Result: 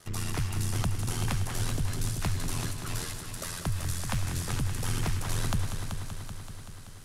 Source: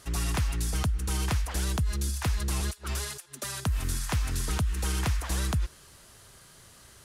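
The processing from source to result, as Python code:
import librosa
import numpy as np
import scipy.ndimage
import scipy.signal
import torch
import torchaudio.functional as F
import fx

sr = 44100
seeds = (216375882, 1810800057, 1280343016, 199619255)

y = x * np.sin(2.0 * np.pi * 43.0 * np.arange(len(x)) / sr)
y = fx.echo_heads(y, sr, ms=191, heads='first and second', feedback_pct=66, wet_db=-10.0)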